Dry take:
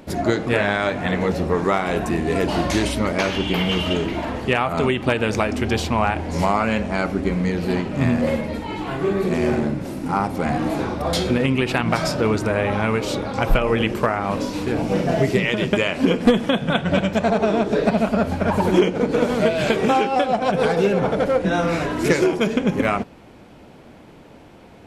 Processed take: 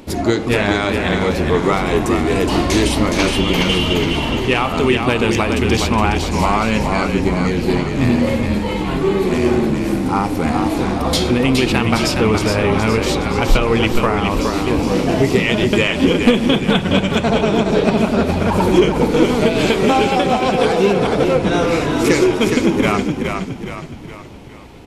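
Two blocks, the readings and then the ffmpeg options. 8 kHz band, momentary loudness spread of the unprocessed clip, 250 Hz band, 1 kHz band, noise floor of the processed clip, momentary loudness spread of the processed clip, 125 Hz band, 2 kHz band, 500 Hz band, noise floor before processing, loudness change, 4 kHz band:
+8.0 dB, 5 LU, +5.5 dB, +3.5 dB, −28 dBFS, 4 LU, +5.0 dB, +4.0 dB, +4.0 dB, −45 dBFS, +4.5 dB, +7.0 dB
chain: -filter_complex "[0:a]equalizer=frequency=160:width_type=o:width=0.67:gain=-7,equalizer=frequency=630:width_type=o:width=0.67:gain=-7,equalizer=frequency=1600:width_type=o:width=0.67:gain=-6,acontrast=74,asplit=7[link_01][link_02][link_03][link_04][link_05][link_06][link_07];[link_02]adelay=417,afreqshift=-34,volume=-5dB[link_08];[link_03]adelay=834,afreqshift=-68,volume=-11.6dB[link_09];[link_04]adelay=1251,afreqshift=-102,volume=-18.1dB[link_10];[link_05]adelay=1668,afreqshift=-136,volume=-24.7dB[link_11];[link_06]adelay=2085,afreqshift=-170,volume=-31.2dB[link_12];[link_07]adelay=2502,afreqshift=-204,volume=-37.8dB[link_13];[link_01][link_08][link_09][link_10][link_11][link_12][link_13]amix=inputs=7:normalize=0"

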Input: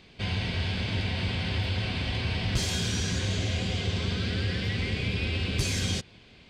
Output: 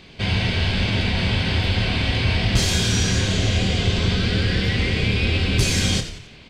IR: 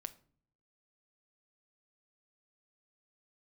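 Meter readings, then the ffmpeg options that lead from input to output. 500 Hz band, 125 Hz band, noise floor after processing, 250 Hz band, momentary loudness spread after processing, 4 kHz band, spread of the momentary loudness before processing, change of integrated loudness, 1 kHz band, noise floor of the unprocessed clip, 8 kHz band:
+9.0 dB, +8.5 dB, −44 dBFS, +9.0 dB, 2 LU, +9.0 dB, 2 LU, +9.0 dB, +9.0 dB, −54 dBFS, +9.0 dB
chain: -filter_complex "[0:a]asplit=5[link_01][link_02][link_03][link_04][link_05];[link_02]adelay=89,afreqshift=-60,volume=-11dB[link_06];[link_03]adelay=178,afreqshift=-120,volume=-18.3dB[link_07];[link_04]adelay=267,afreqshift=-180,volume=-25.7dB[link_08];[link_05]adelay=356,afreqshift=-240,volume=-33dB[link_09];[link_01][link_06][link_07][link_08][link_09]amix=inputs=5:normalize=0,asplit=2[link_10][link_11];[1:a]atrim=start_sample=2205,adelay=26[link_12];[link_11][link_12]afir=irnorm=-1:irlink=0,volume=-5dB[link_13];[link_10][link_13]amix=inputs=2:normalize=0,volume=8dB"

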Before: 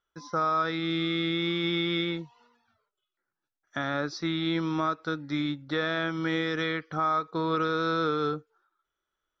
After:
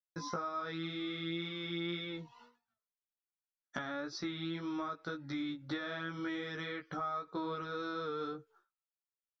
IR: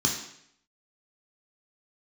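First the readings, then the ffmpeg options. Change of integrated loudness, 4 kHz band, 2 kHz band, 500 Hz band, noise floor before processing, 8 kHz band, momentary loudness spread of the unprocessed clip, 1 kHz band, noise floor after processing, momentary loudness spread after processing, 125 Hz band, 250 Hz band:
−11.0 dB, −10.5 dB, −10.5 dB, −11.0 dB, below −85 dBFS, can't be measured, 5 LU, −11.5 dB, below −85 dBFS, 4 LU, −11.0 dB, −10.0 dB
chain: -af "agate=range=-33dB:threshold=-56dB:ratio=3:detection=peak,acompressor=threshold=-39dB:ratio=10,flanger=delay=15.5:depth=2.2:speed=1.9,volume=6dB"

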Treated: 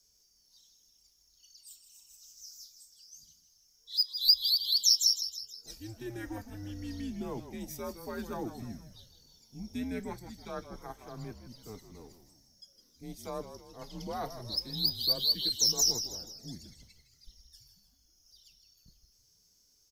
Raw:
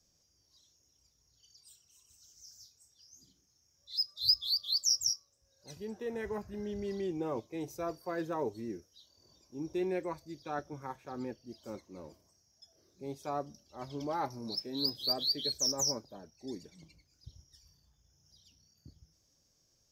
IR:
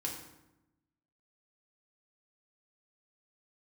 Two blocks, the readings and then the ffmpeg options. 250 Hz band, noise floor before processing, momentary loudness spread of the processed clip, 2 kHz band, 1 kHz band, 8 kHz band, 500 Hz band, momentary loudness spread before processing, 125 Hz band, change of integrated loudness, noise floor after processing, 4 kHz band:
−1.0 dB, −73 dBFS, 24 LU, −1.5 dB, −4.0 dB, +4.5 dB, −5.0 dB, 19 LU, +3.0 dB, +4.5 dB, −68 dBFS, +5.0 dB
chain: -filter_complex "[0:a]crystalizer=i=2.5:c=0,afreqshift=-110,asplit=6[link_01][link_02][link_03][link_04][link_05][link_06];[link_02]adelay=159,afreqshift=-69,volume=-10.5dB[link_07];[link_03]adelay=318,afreqshift=-138,volume=-16.7dB[link_08];[link_04]adelay=477,afreqshift=-207,volume=-22.9dB[link_09];[link_05]adelay=636,afreqshift=-276,volume=-29.1dB[link_10];[link_06]adelay=795,afreqshift=-345,volume=-35.3dB[link_11];[link_01][link_07][link_08][link_09][link_10][link_11]amix=inputs=6:normalize=0,volume=-3dB"

